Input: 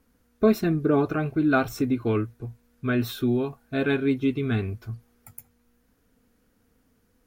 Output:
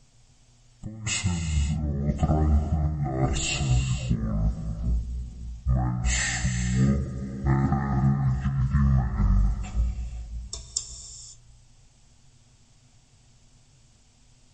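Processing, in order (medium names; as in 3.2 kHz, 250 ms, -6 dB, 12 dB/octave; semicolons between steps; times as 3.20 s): tone controls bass +6 dB, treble +8 dB; compressor with a negative ratio -23 dBFS, ratio -0.5; on a send: bucket-brigade echo 284 ms, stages 1024, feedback 33%, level -16.5 dB; on the sum: gated-style reverb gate 290 ms flat, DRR 6.5 dB; speed mistake 15 ips tape played at 7.5 ips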